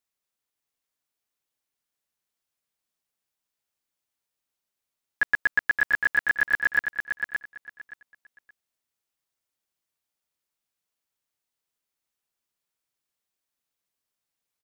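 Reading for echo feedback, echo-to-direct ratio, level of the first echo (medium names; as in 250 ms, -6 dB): 20%, -6.5 dB, -6.5 dB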